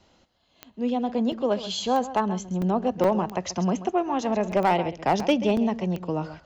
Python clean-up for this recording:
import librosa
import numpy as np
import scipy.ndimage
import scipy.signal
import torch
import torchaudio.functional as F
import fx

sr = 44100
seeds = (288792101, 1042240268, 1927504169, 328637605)

y = fx.fix_declip(x, sr, threshold_db=-13.5)
y = fx.fix_declick_ar(y, sr, threshold=10.0)
y = fx.fix_interpolate(y, sr, at_s=(1.32, 2.62, 3.04, 4.52, 5.2, 5.57), length_ms=2.9)
y = fx.fix_echo_inverse(y, sr, delay_ms=133, level_db=-14.0)